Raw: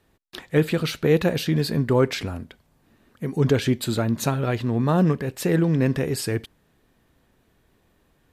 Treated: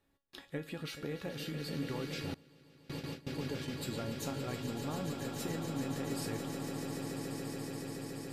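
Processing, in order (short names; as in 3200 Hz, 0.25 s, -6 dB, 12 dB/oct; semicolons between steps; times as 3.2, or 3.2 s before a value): compressor 10:1, threshold -23 dBFS, peak gain reduction 10.5 dB; dynamic EQ 790 Hz, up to +4 dB, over -54 dBFS, Q 7.7; resonator 280 Hz, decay 0.28 s, harmonics all, mix 80%; on a send: swelling echo 0.142 s, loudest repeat 8, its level -9.5 dB; 2.34–3.72 on the sum: gate with hold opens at -27 dBFS; gain -2 dB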